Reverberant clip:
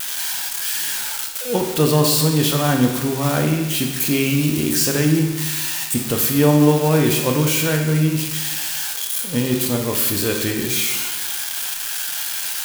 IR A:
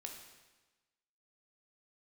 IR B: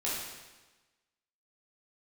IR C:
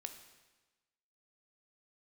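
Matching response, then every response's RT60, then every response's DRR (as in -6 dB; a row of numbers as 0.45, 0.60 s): A; 1.2, 1.2, 1.2 s; 2.0, -7.5, 6.5 dB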